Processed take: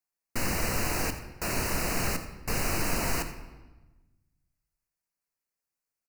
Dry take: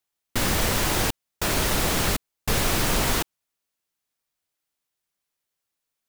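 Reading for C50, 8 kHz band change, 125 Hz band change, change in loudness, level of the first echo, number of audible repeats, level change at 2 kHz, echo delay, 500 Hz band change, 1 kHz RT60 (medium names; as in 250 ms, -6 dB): 9.0 dB, -6.5 dB, -6.0 dB, -6.5 dB, -15.0 dB, 1, -5.5 dB, 87 ms, -6.0 dB, 1.1 s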